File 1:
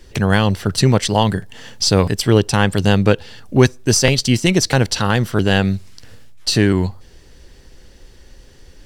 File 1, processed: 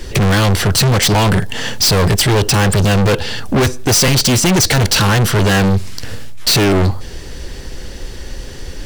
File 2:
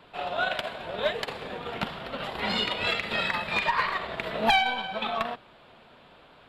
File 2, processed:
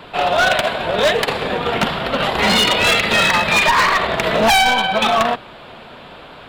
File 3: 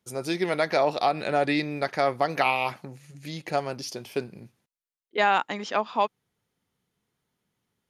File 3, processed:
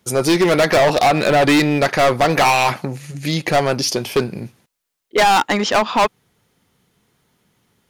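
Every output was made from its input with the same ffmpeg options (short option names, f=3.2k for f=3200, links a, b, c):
-af "apsyclip=11dB,volume=15.5dB,asoftclip=hard,volume=-15.5dB,volume=5dB"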